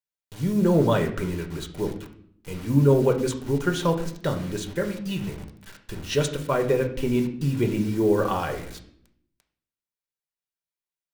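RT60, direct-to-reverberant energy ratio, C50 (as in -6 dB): 0.65 s, 3.0 dB, 10.0 dB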